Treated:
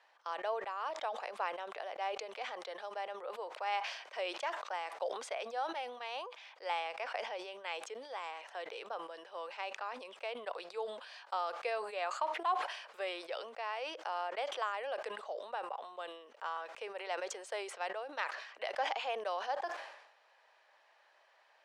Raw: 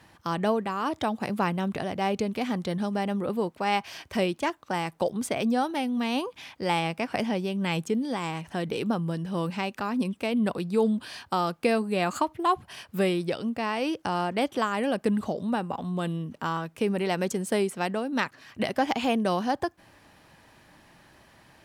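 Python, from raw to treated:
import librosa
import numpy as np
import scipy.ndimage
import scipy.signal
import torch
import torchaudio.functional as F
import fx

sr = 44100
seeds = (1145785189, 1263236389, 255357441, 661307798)

y = scipy.signal.sosfilt(scipy.signal.butter(6, 510.0, 'highpass', fs=sr, output='sos'), x)
y = fx.air_absorb(y, sr, metres=110.0)
y = fx.sustainer(y, sr, db_per_s=65.0)
y = y * 10.0 ** (-8.5 / 20.0)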